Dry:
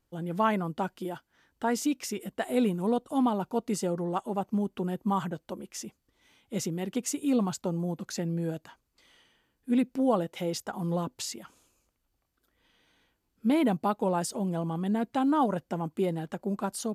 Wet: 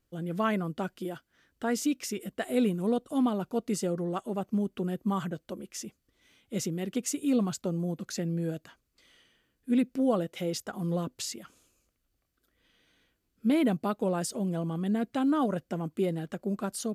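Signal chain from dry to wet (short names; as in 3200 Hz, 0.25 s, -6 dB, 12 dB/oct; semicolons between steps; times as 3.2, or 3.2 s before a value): bell 890 Hz -10 dB 0.42 oct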